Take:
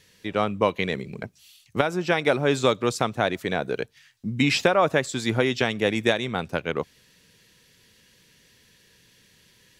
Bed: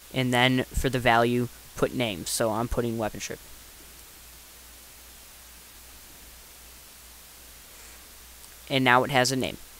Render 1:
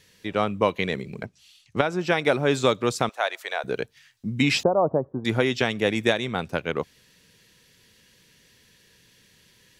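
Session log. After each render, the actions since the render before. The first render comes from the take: 1.25–1.99 s: Bessel low-pass 6.9 kHz; 3.09–3.64 s: high-pass 600 Hz 24 dB/octave; 4.63–5.25 s: steep low-pass 990 Hz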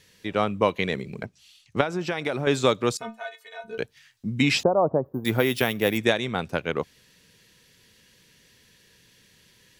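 1.83–2.47 s: compression, threshold -22 dBFS; 2.97–3.78 s: inharmonic resonator 220 Hz, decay 0.22 s, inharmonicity 0.008; 5.05–5.98 s: careless resampling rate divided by 3×, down none, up hold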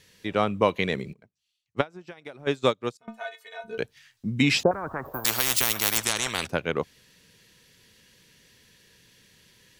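1.13–3.08 s: upward expansion 2.5:1, over -33 dBFS; 4.71–6.47 s: spectrum-flattening compressor 10:1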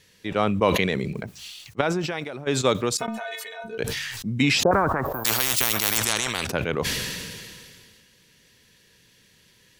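decay stretcher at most 27 dB/s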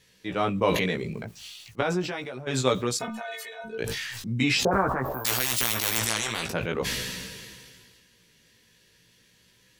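chorus 0.4 Hz, delay 15.5 ms, depth 2.5 ms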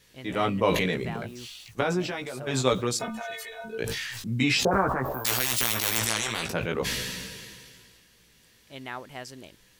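add bed -18 dB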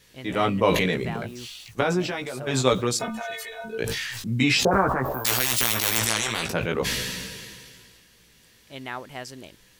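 trim +3 dB

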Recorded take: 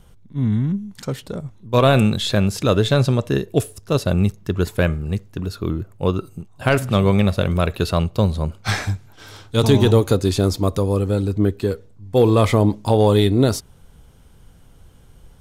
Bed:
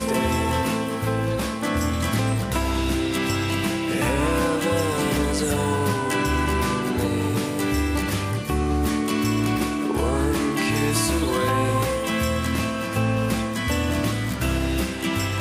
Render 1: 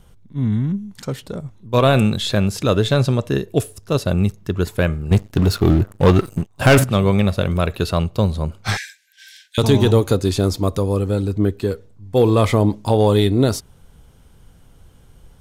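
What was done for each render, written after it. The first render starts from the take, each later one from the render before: 5.11–6.84 s: waveshaping leveller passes 3; 8.77–9.58 s: brick-wall FIR high-pass 1.5 kHz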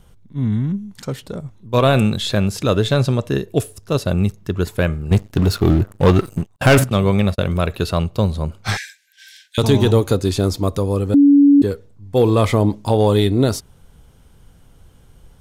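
6.56–7.58 s: gate -26 dBFS, range -37 dB; 11.14–11.62 s: bleep 284 Hz -6.5 dBFS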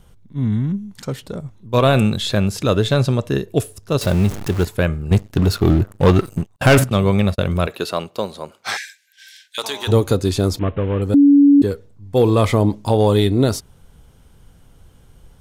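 4.01–4.65 s: jump at every zero crossing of -23 dBFS; 7.66–9.87 s: high-pass 250 Hz -> 1 kHz; 10.59–11.02 s: CVSD coder 16 kbps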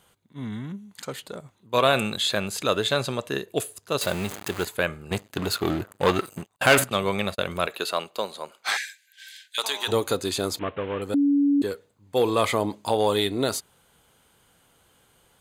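high-pass 870 Hz 6 dB/octave; band-stop 5.5 kHz, Q 5.8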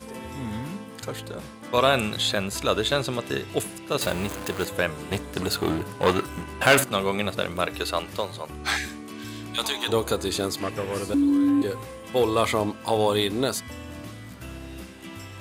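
add bed -15.5 dB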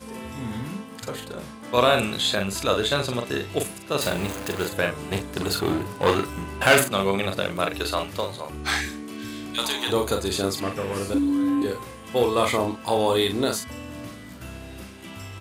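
doubling 41 ms -5.5 dB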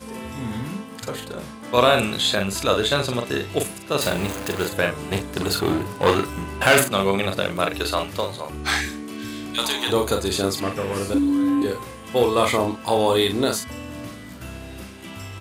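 trim +2.5 dB; peak limiter -2 dBFS, peak gain reduction 2.5 dB

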